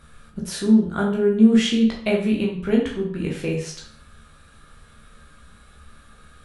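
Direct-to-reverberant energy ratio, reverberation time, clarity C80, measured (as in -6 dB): -3.0 dB, 0.55 s, 9.5 dB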